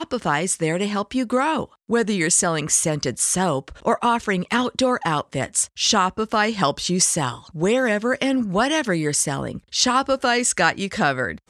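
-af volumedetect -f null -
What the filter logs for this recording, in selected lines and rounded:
mean_volume: -21.6 dB
max_volume: -2.7 dB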